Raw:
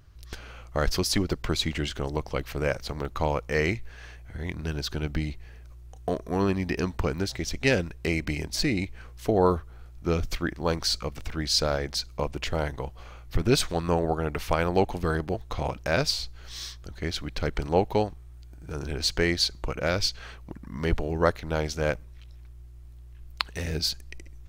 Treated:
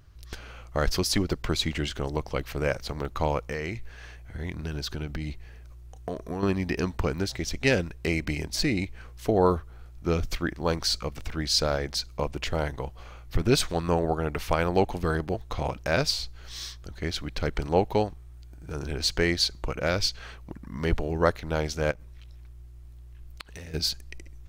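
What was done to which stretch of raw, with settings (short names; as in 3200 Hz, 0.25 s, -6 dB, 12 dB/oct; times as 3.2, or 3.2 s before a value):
3.42–6.43 compressor 10:1, threshold -27 dBFS
21.91–23.74 compressor, threshold -38 dBFS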